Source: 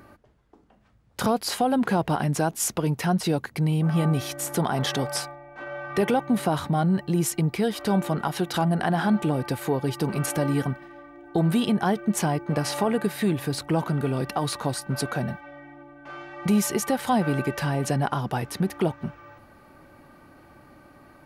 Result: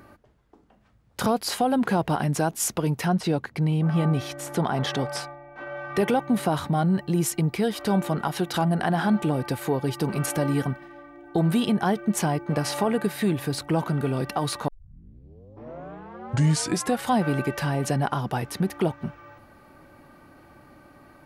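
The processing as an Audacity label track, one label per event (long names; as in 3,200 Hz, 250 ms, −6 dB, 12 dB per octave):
3.080000	5.770000	high-shelf EQ 7,300 Hz −12 dB
14.680000	14.680000	tape start 2.42 s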